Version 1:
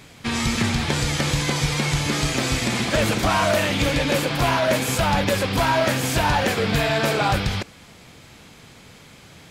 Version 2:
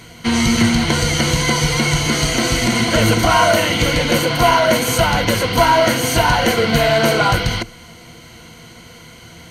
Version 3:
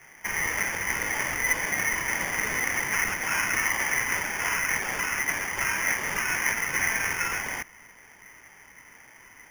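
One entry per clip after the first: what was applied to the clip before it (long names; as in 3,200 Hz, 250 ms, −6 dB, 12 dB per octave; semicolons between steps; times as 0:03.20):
EQ curve with evenly spaced ripples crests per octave 1.9, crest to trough 12 dB; level +4.5 dB
pitch vibrato 1.9 Hz 27 cents; four-pole ladder high-pass 1,700 Hz, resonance 75%; decimation without filtering 11×; level −1.5 dB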